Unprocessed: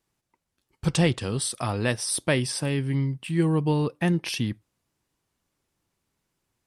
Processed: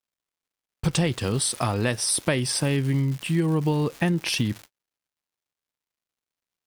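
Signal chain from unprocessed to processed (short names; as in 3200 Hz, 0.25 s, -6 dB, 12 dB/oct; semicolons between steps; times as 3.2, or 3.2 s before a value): crackle 370/s -35 dBFS; gate -42 dBFS, range -43 dB; compressor, threshold -25 dBFS, peak gain reduction 8.5 dB; gain +5.5 dB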